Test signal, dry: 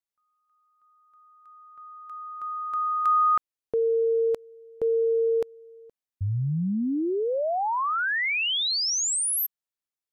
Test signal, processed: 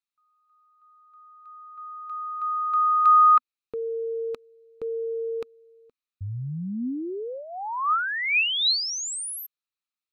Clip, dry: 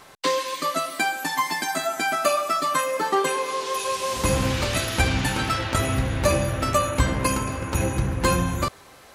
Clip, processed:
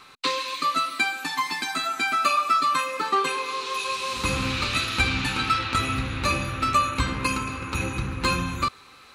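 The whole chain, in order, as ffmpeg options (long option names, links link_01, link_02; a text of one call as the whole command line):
ffmpeg -i in.wav -af "equalizer=frequency=250:width_type=o:width=0.33:gain=4,equalizer=frequency=630:width_type=o:width=0.33:gain=-10,equalizer=frequency=1250:width_type=o:width=0.33:gain=11,equalizer=frequency=2500:width_type=o:width=0.33:gain=11,equalizer=frequency=4000:width_type=o:width=0.33:gain=11,equalizer=frequency=12500:width_type=o:width=0.33:gain=-6,volume=-5.5dB" out.wav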